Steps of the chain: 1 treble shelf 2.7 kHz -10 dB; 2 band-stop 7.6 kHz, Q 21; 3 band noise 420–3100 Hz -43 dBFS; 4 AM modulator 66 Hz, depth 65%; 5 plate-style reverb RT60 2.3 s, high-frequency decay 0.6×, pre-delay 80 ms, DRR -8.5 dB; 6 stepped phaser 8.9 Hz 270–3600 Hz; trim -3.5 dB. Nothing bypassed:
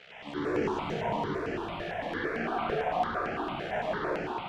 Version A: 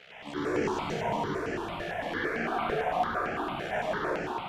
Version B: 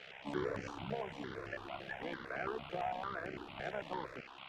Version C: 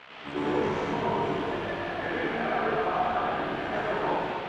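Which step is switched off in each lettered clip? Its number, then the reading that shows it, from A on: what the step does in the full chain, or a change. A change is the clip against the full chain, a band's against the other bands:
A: 1, 2 kHz band +2.0 dB; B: 5, crest factor change +4.0 dB; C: 6, loudness change +3.5 LU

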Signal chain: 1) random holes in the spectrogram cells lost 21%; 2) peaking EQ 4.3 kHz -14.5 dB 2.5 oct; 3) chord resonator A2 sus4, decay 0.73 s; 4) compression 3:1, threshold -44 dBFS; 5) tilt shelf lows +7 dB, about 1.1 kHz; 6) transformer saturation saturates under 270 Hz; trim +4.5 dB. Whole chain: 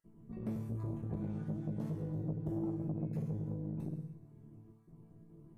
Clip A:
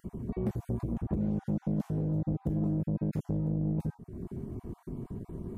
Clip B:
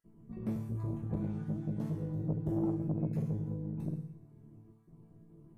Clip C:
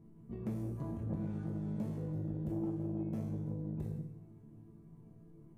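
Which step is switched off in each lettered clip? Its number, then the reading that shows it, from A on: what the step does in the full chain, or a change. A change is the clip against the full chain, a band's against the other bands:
3, momentary loudness spread change -10 LU; 4, mean gain reduction 1.5 dB; 1, momentary loudness spread change -1 LU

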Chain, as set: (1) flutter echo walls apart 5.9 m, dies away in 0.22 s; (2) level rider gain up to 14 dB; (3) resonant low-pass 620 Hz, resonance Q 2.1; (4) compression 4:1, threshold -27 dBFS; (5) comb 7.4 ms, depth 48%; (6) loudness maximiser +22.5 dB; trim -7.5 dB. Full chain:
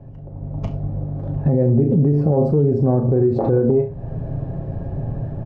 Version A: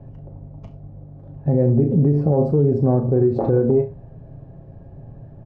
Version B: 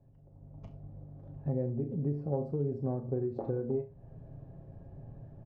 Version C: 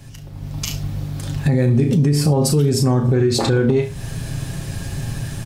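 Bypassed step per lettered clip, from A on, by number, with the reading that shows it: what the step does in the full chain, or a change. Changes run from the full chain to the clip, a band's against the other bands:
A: 2, momentary loudness spread change -8 LU; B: 6, crest factor change +6.5 dB; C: 3, 500 Hz band -3.0 dB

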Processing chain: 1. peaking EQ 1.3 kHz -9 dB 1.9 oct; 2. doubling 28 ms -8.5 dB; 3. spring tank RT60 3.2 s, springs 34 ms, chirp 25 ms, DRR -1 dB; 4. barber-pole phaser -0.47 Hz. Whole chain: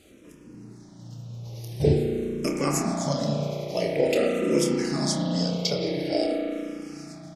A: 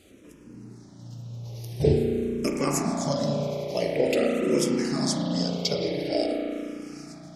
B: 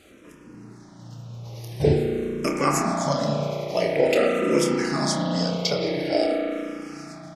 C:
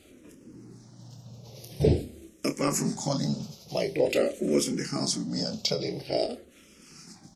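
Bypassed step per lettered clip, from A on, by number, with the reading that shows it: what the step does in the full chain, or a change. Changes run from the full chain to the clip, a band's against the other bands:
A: 2, momentary loudness spread change +1 LU; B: 1, 1 kHz band +5.5 dB; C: 3, momentary loudness spread change +4 LU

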